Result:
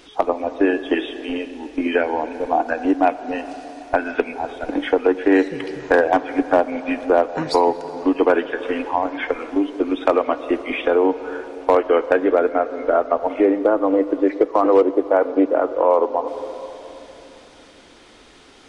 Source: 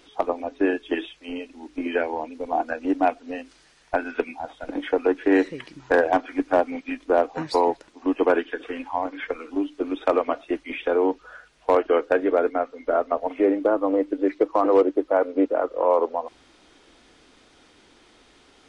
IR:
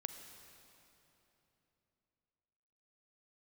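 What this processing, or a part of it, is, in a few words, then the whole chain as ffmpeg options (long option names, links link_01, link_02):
ducked reverb: -filter_complex "[0:a]asplit=3[link_01][link_02][link_03];[1:a]atrim=start_sample=2205[link_04];[link_02][link_04]afir=irnorm=-1:irlink=0[link_05];[link_03]apad=whole_len=824201[link_06];[link_05][link_06]sidechaincompress=threshold=-21dB:ratio=8:attack=16:release=524,volume=4.5dB[link_07];[link_01][link_07]amix=inputs=2:normalize=0"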